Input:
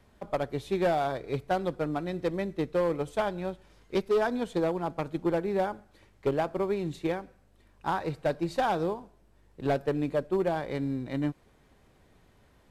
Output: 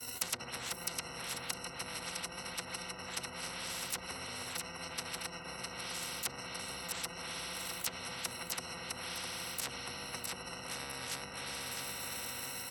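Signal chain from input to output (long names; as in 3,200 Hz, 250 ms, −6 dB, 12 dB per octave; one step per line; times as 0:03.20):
samples in bit-reversed order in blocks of 128 samples
downward expander −55 dBFS
bass and treble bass −12 dB, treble +3 dB
on a send at −5 dB: convolution reverb RT60 2.7 s, pre-delay 60 ms
on the sum: treble cut that deepens with the level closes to 380 Hz, closed at −22.5 dBFS
EQ curve with evenly spaced ripples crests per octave 2, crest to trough 17 dB
treble cut that deepens with the level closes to 2,900 Hz, closed at −30 dBFS
high-pass filter 91 Hz 24 dB per octave
repeating echo 657 ms, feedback 17%, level −10 dB
every bin compressed towards the loudest bin 10 to 1
level +7 dB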